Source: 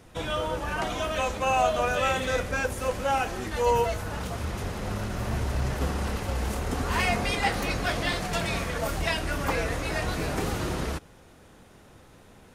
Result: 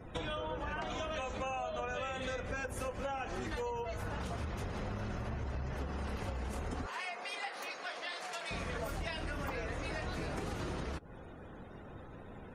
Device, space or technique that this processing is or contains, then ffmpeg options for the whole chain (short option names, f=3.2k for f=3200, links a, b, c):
serial compression, peaks first: -filter_complex "[0:a]acompressor=threshold=-34dB:ratio=6,acompressor=threshold=-41dB:ratio=2.5,asettb=1/sr,asplit=3[a][b][c];[a]atrim=end=6.864[d];[b]atrim=start=6.86:end=8.51,asetpts=PTS-STARTPTS,afade=t=in:d=0.004:c=qsin,afade=t=out:st=1.646:d=0.004:c=qsin,highpass=590[e];[c]atrim=start=8.506[f];[d][e]acrossfade=d=0.004:c1=hsin:c2=qsin[g];[g][f]acrossfade=d=0.004:c1=qsin:c2=hsin,afftdn=nr=27:nf=-59,volume=3.5dB"